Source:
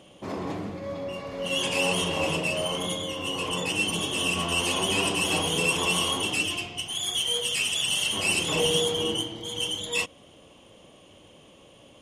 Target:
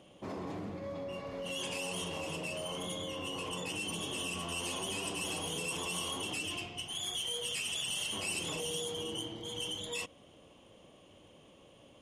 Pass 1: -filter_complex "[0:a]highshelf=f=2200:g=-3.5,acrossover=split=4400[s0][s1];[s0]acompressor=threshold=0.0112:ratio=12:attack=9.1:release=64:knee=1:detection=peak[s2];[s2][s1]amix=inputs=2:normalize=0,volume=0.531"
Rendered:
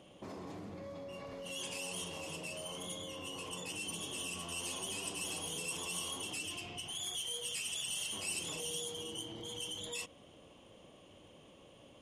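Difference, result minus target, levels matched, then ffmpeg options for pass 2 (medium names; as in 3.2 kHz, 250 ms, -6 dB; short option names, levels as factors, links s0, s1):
compression: peak gain reduction +6 dB
-filter_complex "[0:a]highshelf=f=2200:g=-3.5,acrossover=split=4400[s0][s1];[s0]acompressor=threshold=0.0237:ratio=12:attack=9.1:release=64:knee=1:detection=peak[s2];[s2][s1]amix=inputs=2:normalize=0,volume=0.531"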